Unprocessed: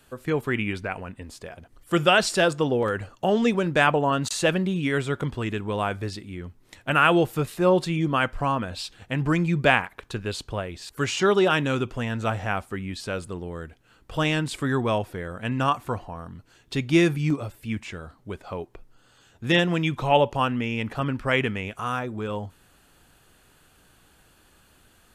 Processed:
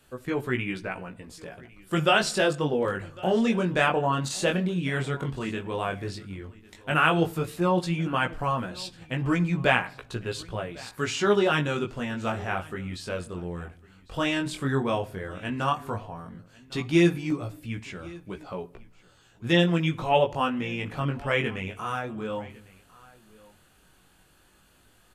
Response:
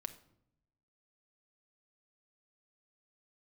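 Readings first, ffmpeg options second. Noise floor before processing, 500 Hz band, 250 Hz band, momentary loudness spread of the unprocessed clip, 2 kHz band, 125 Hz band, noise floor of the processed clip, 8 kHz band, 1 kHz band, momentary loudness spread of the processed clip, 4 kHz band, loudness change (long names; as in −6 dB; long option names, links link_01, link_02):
−59 dBFS, −2.5 dB, −2.0 dB, 16 LU, −2.5 dB, −2.0 dB, −60 dBFS, −2.5 dB, −2.5 dB, 17 LU, −2.5 dB, −2.5 dB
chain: -filter_complex "[0:a]flanger=delay=16:depth=6.9:speed=0.11,aecho=1:1:1102:0.075,asplit=2[link_01][link_02];[1:a]atrim=start_sample=2205[link_03];[link_02][link_03]afir=irnorm=-1:irlink=0,volume=-0.5dB[link_04];[link_01][link_04]amix=inputs=2:normalize=0,volume=-4dB"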